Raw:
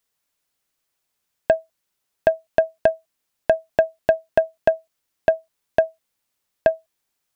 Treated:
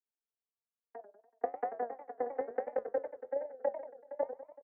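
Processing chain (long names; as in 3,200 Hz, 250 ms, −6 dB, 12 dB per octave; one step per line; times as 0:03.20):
vocoder with a gliding carrier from A3, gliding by +5 semitones
high-pass filter 260 Hz 24 dB per octave
comb filter 6.9 ms, depth 33%
time stretch by overlap-add 0.63×, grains 51 ms
low-pass filter 1,800 Hz 24 dB per octave
output level in coarse steps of 22 dB
repeating echo 464 ms, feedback 22%, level −18.5 dB
flanger 1.1 Hz, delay 8 ms, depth 4.6 ms, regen +71%
compressor whose output falls as the input rises −29 dBFS, ratio −0.5
feedback echo with a swinging delay time 95 ms, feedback 53%, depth 197 cents, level −11 dB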